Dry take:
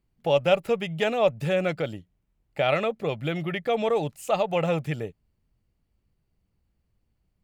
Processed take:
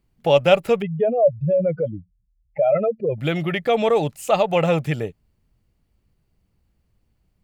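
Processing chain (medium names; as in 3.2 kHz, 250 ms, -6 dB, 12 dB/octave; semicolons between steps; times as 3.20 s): 0.82–3.18 s: spectral contrast enhancement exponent 2.8; trim +6 dB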